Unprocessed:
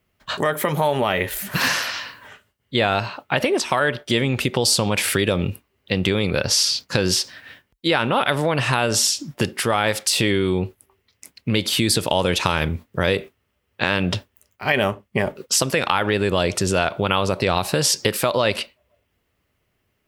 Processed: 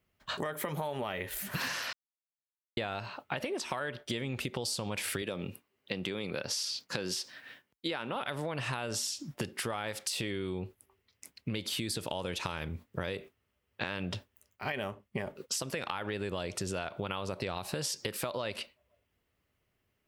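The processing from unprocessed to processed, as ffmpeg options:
ffmpeg -i in.wav -filter_complex "[0:a]asettb=1/sr,asplit=3[link_01][link_02][link_03];[link_01]atrim=end=5.224[link_04];[link_02]atrim=start=5.22:end=8.16,asetpts=PTS-STARTPTS,afade=type=in:duration=0.004:curve=qsin,afade=type=out:start_time=2.936:duration=0.004:curve=qsin,highpass=160[link_05];[link_03]atrim=start=8.156[link_06];[link_04][link_05]acrossfade=duration=0.004:curve1=hsin:curve2=qsin[link_07];[link_07][link_06]acrossfade=duration=0.004:curve1=qsin:curve2=hsin,asplit=3[link_08][link_09][link_10];[link_08]atrim=end=1.93,asetpts=PTS-STARTPTS,afade=type=out:start_time=1.926:duration=0.004:curve=hsin[link_11];[link_09]atrim=start=1.93:end=2.77,asetpts=PTS-STARTPTS,volume=0[link_12];[link_10]atrim=start=2.77,asetpts=PTS-STARTPTS,afade=type=in:duration=0.004:curve=hsin[link_13];[link_11][link_12][link_13]concat=n=3:v=0:a=1,acompressor=threshold=-24dB:ratio=6,volume=-8dB" out.wav

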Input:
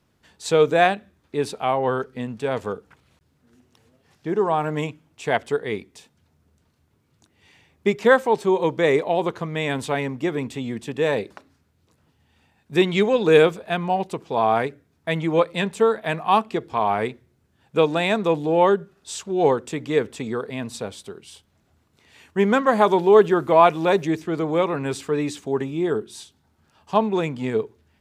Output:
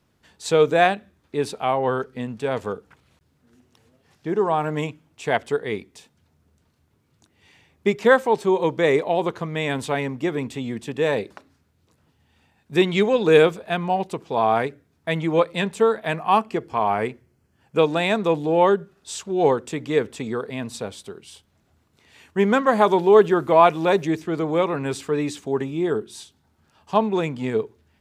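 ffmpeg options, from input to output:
ffmpeg -i in.wav -filter_complex "[0:a]asettb=1/sr,asplit=3[link_01][link_02][link_03];[link_01]atrim=end=16.144[link_04];[link_02]atrim=start=16.14:end=17.79,asetpts=PTS-STARTPTS,afade=type=in:duration=0.004:curve=qsin,afade=type=out:start_time=1.646:duration=0.004:curve=qsin,bandreject=frequency=3700:width=5[link_05];[link_03]atrim=start=17.786[link_06];[link_04][link_05]acrossfade=duration=0.004:curve1=hsin:curve2=qsin[link_07];[link_07][link_06]acrossfade=duration=0.004:curve1=qsin:curve2=hsin" out.wav

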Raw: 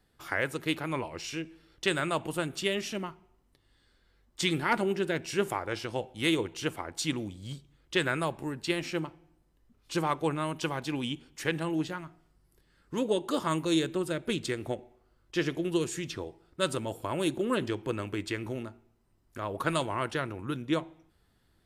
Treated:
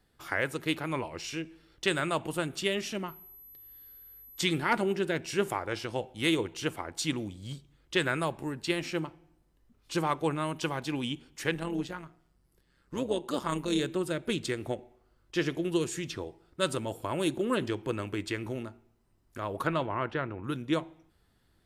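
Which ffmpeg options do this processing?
ffmpeg -i in.wav -filter_complex "[0:a]asettb=1/sr,asplit=3[link_01][link_02][link_03];[link_01]atrim=end=3.084[link_04];[link_02]atrim=start=3.08:end=4.43,asetpts=PTS-STARTPTS,afade=type=in:duration=0.004:curve=qsin,afade=type=out:start_time=1.346:duration=0.004:curve=qsin,aeval=exprs='val(0)+0.00355*sin(2*PI*12000*n/s)':channel_layout=same[link_05];[link_03]atrim=start=4.426[link_06];[link_04][link_05]acrossfade=duration=0.004:curve1=hsin:curve2=qsin[link_07];[link_07][link_06]acrossfade=duration=0.004:curve1=qsin:curve2=hsin,asettb=1/sr,asplit=3[link_08][link_09][link_10];[link_08]atrim=end=11.544[link_11];[link_09]atrim=start=11.54:end=13.81,asetpts=PTS-STARTPTS,afade=type=in:duration=0.004:curve=qsin,afade=type=out:start_time=2.266:duration=0.004:curve=qsin,tremolo=f=130:d=0.571[link_12];[link_10]atrim=start=13.806[link_13];[link_11][link_12]acrossfade=duration=0.004:curve1=hsin:curve2=qsin[link_14];[link_14][link_13]acrossfade=duration=0.004:curve1=qsin:curve2=hsin,asettb=1/sr,asplit=3[link_15][link_16][link_17];[link_15]atrim=end=19.674[link_18];[link_16]atrim=start=19.67:end=20.44,asetpts=PTS-STARTPTS,afade=type=in:duration=0.004:curve=qsin,afade=type=out:start_time=0.766:duration=0.004:curve=qsin,lowpass=2400[link_19];[link_17]atrim=start=20.436[link_20];[link_18][link_19]acrossfade=duration=0.004:curve1=hsin:curve2=qsin[link_21];[link_21][link_20]acrossfade=duration=0.004:curve1=qsin:curve2=hsin" out.wav

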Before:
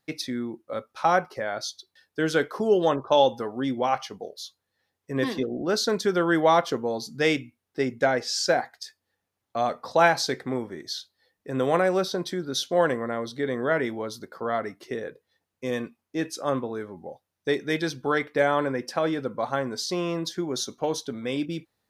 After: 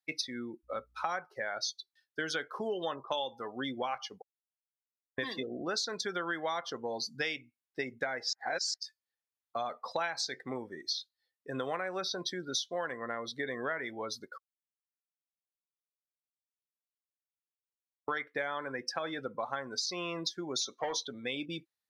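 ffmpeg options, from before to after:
ffmpeg -i in.wav -filter_complex "[0:a]asettb=1/sr,asplit=3[link_01][link_02][link_03];[link_01]atrim=end=0.634[link_04];[link_02]atrim=start=0.63:end=1.07,asetpts=PTS-STARTPTS,afade=type=in:duration=0.004:curve=qsin,afade=type=out:start_time=0.436:duration=0.004:curve=qsin,aeval=exprs='val(0)+0.00251*(sin(2*PI*60*n/s)+sin(2*PI*2*60*n/s)/2+sin(2*PI*3*60*n/s)/3+sin(2*PI*4*60*n/s)/4+sin(2*PI*5*60*n/s)/5)':channel_layout=same[link_05];[link_03]atrim=start=1.066[link_06];[link_04][link_05]acrossfade=duration=0.004:curve1=hsin:curve2=qsin[link_07];[link_07][link_06]acrossfade=duration=0.004:curve1=qsin:curve2=hsin,asplit=3[link_08][link_09][link_10];[link_08]afade=type=out:start_time=20.6:duration=0.02[link_11];[link_09]asplit=2[link_12][link_13];[link_13]highpass=frequency=720:poles=1,volume=16dB,asoftclip=type=tanh:threshold=-14dB[link_14];[link_12][link_14]amix=inputs=2:normalize=0,lowpass=frequency=2600:poles=1,volume=-6dB,afade=type=in:start_time=20.6:duration=0.02,afade=type=out:start_time=21.07:duration=0.02[link_15];[link_10]afade=type=in:start_time=21.07:duration=0.02[link_16];[link_11][link_15][link_16]amix=inputs=3:normalize=0,asplit=7[link_17][link_18][link_19][link_20][link_21][link_22][link_23];[link_17]atrim=end=4.22,asetpts=PTS-STARTPTS,afade=type=out:start_time=4.216:duration=0.004:curve=hsin[link_24];[link_18]atrim=start=4.22:end=5.18,asetpts=PTS-STARTPTS,volume=0[link_25];[link_19]atrim=start=5.18:end=8.332,asetpts=PTS-STARTPTS,afade=type=in:duration=0.004:curve=hsin[link_26];[link_20]atrim=start=8.328:end=8.742,asetpts=PTS-STARTPTS,areverse[link_27];[link_21]atrim=start=8.738:end=14.38,asetpts=PTS-STARTPTS,afade=type=out:start_time=5.638:duration=0.004:curve=hsin[link_28];[link_22]atrim=start=14.38:end=18.08,asetpts=PTS-STARTPTS,volume=0[link_29];[link_23]atrim=start=18.08,asetpts=PTS-STARTPTS,afade=type=in:duration=0.004:curve=hsin[link_30];[link_24][link_25][link_26]concat=n=3:v=0:a=1[link_31];[link_31][link_27]acrossfade=duration=0.004:curve1=hsin:curve2=hsin[link_32];[link_28][link_29][link_30]concat=n=3:v=0:a=1[link_33];[link_32][link_33]acrossfade=duration=0.004:curve1=hsin:curve2=hsin,afftdn=noise_reduction=19:noise_floor=-37,tiltshelf=frequency=850:gain=-8.5,acompressor=threshold=-30dB:ratio=6,volume=-2dB" out.wav

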